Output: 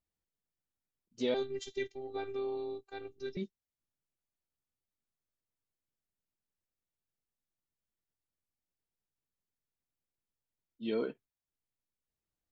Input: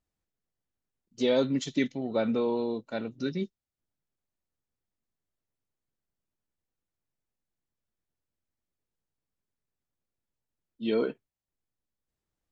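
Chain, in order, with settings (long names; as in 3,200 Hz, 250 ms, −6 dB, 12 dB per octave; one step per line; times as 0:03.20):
0:01.34–0:03.37: phases set to zero 393 Hz
level −6.5 dB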